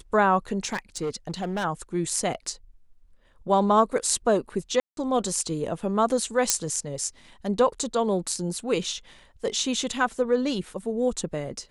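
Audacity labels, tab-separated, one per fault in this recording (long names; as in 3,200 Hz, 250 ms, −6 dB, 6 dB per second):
0.650000	1.650000	clipping −24 dBFS
4.800000	4.970000	drop-out 172 ms
6.500000	6.500000	click −3 dBFS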